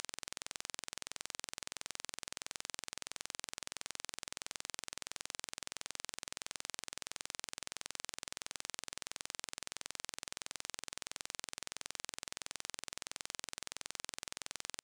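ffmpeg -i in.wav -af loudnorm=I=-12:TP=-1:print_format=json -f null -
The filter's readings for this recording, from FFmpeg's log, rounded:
"input_i" : "-44.8",
"input_tp" : "-17.8",
"input_lra" : "0.0",
"input_thresh" : "-54.8",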